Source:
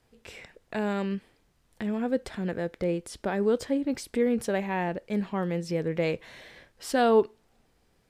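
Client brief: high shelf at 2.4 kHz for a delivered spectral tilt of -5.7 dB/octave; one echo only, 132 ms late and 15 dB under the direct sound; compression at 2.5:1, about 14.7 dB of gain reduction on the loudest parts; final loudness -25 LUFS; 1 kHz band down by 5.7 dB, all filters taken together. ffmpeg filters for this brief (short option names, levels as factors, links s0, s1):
-af "equalizer=f=1000:t=o:g=-8.5,highshelf=f=2400:g=-3,acompressor=threshold=0.00891:ratio=2.5,aecho=1:1:132:0.178,volume=6.31"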